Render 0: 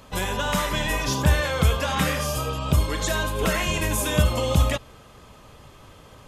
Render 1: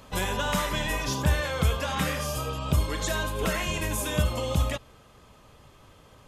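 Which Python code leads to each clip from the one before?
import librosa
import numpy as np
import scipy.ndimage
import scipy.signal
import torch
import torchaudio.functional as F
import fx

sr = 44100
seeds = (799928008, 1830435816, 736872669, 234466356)

y = fx.rider(x, sr, range_db=10, speed_s=2.0)
y = F.gain(torch.from_numpy(y), -4.5).numpy()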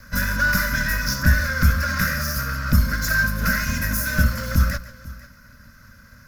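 y = fx.lower_of_two(x, sr, delay_ms=2.0)
y = fx.curve_eq(y, sr, hz=(150.0, 240.0, 390.0, 570.0, 860.0, 1500.0, 3200.0, 5300.0, 8300.0, 13000.0), db=(0, 10, -27, -9, -20, 9, -18, 5, -12, 6))
y = fx.echo_multitap(y, sr, ms=(140, 496), db=(-16.5, -19.0))
y = F.gain(torch.from_numpy(y), 8.0).numpy()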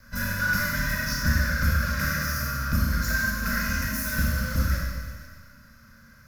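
y = fx.rev_schroeder(x, sr, rt60_s=1.6, comb_ms=27, drr_db=-2.5)
y = F.gain(torch.from_numpy(y), -8.5).numpy()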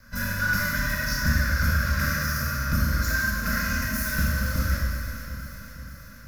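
y = fx.echo_alternate(x, sr, ms=241, hz=1700.0, feedback_pct=78, wet_db=-9)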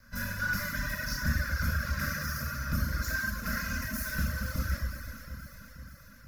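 y = fx.dereverb_blind(x, sr, rt60_s=0.65)
y = F.gain(torch.from_numpy(y), -5.5).numpy()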